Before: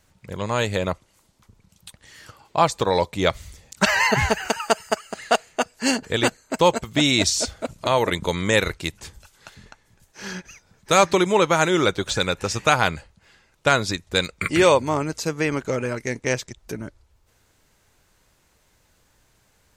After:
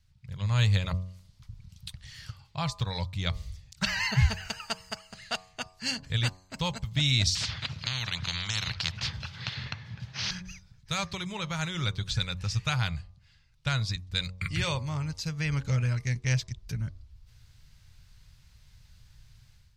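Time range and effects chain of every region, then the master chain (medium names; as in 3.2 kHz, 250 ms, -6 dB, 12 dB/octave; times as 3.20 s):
7.35–10.31 s: high-pass 110 Hz 24 dB/octave + distance through air 250 m + spectrum-flattening compressor 10:1
whole clip: de-hum 92.38 Hz, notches 13; level rider; FFT filter 130 Hz 0 dB, 330 Hz -28 dB, 4.8 kHz -7 dB, 7.2 kHz -17 dB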